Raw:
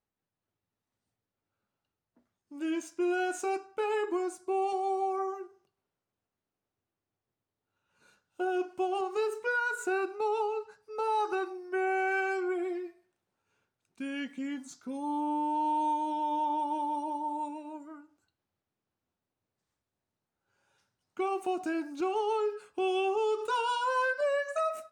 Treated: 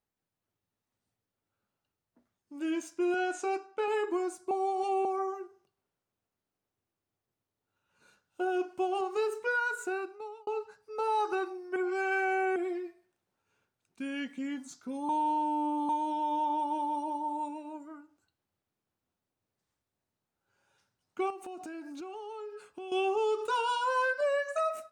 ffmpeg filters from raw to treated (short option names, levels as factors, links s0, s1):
-filter_complex "[0:a]asettb=1/sr,asplit=3[s0][s1][s2];[s0]atrim=end=3.144[s3];[s1]atrim=start=3.14:end=3.88,asetpts=PTS-STARTPTS,afade=t=in:d=0.004:c=qsin,afade=t=out:st=0.736:d=0.004:c=qsin,highpass=220,lowpass=7100[s4];[s2]atrim=start=3.876[s5];[s3][s4]acrossfade=d=0.004:c1=hsin:c2=qsin[s6];[s6][s5]acrossfade=d=0.004:c1=qsin:c2=hsin,asettb=1/sr,asplit=3[s7][s8][s9];[s7]atrim=end=21.304[s10];[s8]atrim=start=21.3:end=22.92,asetpts=PTS-STARTPTS,afade=t=in:d=0.004:c=qsin,afade=t=out:st=1.616:d=0.004:c=qsin,acompressor=threshold=0.01:ratio=6:attack=3.2:release=140:knee=1:detection=peak[s11];[s9]atrim=start=22.916[s12];[s10][s11]acrossfade=d=0.004:c1=hsin:c2=qsin[s13];[s13][s12]acrossfade=d=0.004:c1=qsin:c2=hsin,asplit=8[s14][s15][s16][s17][s18][s19][s20][s21];[s14]atrim=end=4.512[s22];[s15]atrim=start=4.508:end=5.052,asetpts=PTS-STARTPTS,areverse[s23];[s16]atrim=start=5.048:end=10.47,asetpts=PTS-STARTPTS,afade=t=out:st=4.582:d=0.84[s24];[s17]atrim=start=10.47:end=11.762,asetpts=PTS-STARTPTS,afade=t=in:d=0.004:c=hsin[s25];[s18]atrim=start=11.758:end=12.562,asetpts=PTS-STARTPTS,areverse[s26];[s19]atrim=start=12.558:end=15.092[s27];[s20]atrim=start=15.088:end=15.892,asetpts=PTS-STARTPTS,areverse[s28];[s21]atrim=start=15.888[s29];[s22][s23]acrossfade=d=0.004:c1=hsin:c2=hsin[s30];[s24][s25]concat=n=2:v=0:a=1[s31];[s30][s31]acrossfade=d=0.004:c1=hsin:c2=hsin[s32];[s32][s26]acrossfade=d=0.004:c1=hsin:c2=hsin[s33];[s33][s27]acrossfade=d=0.004:c1=hsin:c2=hsin[s34];[s34][s28]acrossfade=d=0.004:c1=hsin:c2=hsin[s35];[s35][s29]acrossfade=d=0.004:c1=hsin:c2=hsin"